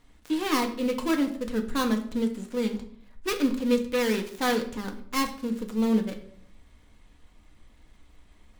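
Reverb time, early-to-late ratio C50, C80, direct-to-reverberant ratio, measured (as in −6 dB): 0.60 s, 11.5 dB, 14.0 dB, 3.5 dB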